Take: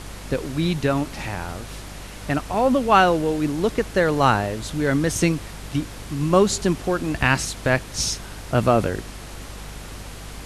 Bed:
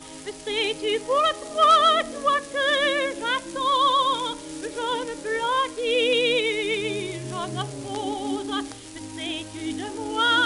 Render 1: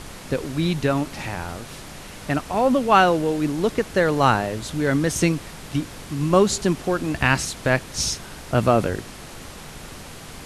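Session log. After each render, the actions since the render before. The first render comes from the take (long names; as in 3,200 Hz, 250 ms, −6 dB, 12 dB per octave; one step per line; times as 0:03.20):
hum removal 50 Hz, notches 2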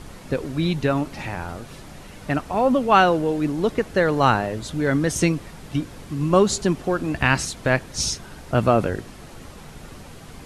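broadband denoise 7 dB, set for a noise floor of −39 dBFS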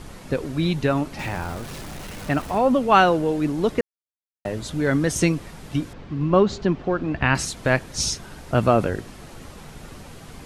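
0:01.19–0:02.58: converter with a step at zero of −35 dBFS
0:03.81–0:04.45: silence
0:05.93–0:07.35: high-frequency loss of the air 210 metres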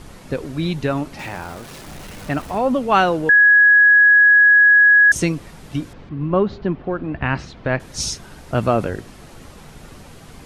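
0:01.17–0:01.87: low-shelf EQ 140 Hz −8.5 dB
0:03.29–0:05.12: beep over 1,670 Hz −7.5 dBFS
0:06.09–0:07.80: high-frequency loss of the air 260 metres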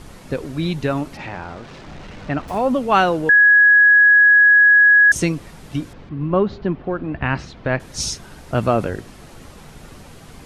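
0:01.17–0:02.48: high-frequency loss of the air 140 metres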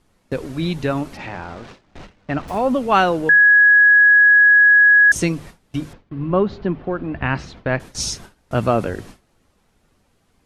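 mains-hum notches 50/100/150 Hz
noise gate with hold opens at −28 dBFS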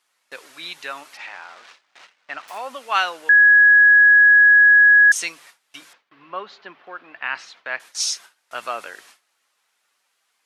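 high-pass filter 1,300 Hz 12 dB per octave
dynamic equaliser 4,000 Hz, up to +3 dB, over −26 dBFS, Q 0.73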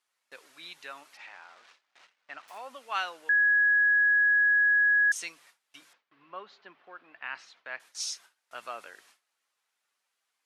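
level −11.5 dB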